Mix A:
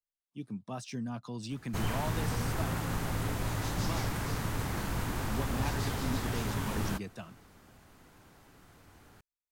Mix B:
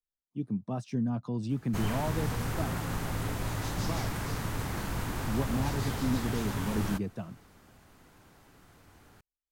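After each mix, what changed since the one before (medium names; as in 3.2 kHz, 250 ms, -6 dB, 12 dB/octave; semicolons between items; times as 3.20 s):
speech: add tilt shelf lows +8 dB, about 1.1 kHz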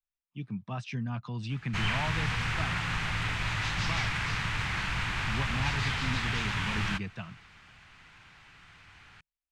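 master: add FFT filter 160 Hz 0 dB, 260 Hz -9 dB, 540 Hz -8 dB, 880 Hz +1 dB, 2.5 kHz +14 dB, 8.1 kHz -4 dB, 14 kHz -23 dB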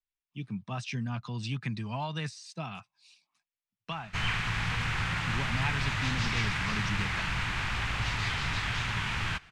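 speech: add treble shelf 3.7 kHz +10.5 dB; background: entry +2.40 s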